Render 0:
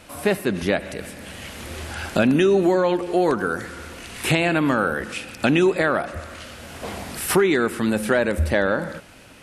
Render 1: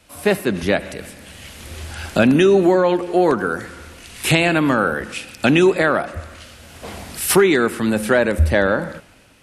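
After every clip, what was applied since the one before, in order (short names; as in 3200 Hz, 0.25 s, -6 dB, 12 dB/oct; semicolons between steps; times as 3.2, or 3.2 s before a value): three-band expander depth 40%; gain +3.5 dB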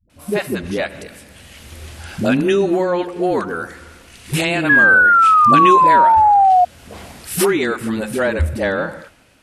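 dispersion highs, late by 98 ms, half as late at 330 Hz; painted sound fall, 4.69–6.65, 710–1700 Hz -8 dBFS; gain -2.5 dB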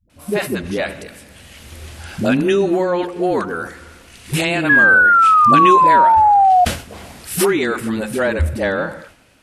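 sustainer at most 130 dB/s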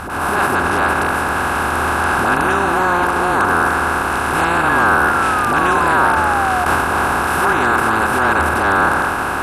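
per-bin compression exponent 0.2; transient shaper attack -10 dB, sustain -6 dB; gain -10.5 dB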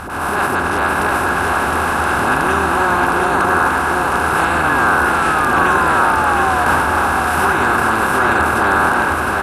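echo 0.712 s -3.5 dB; gain -1 dB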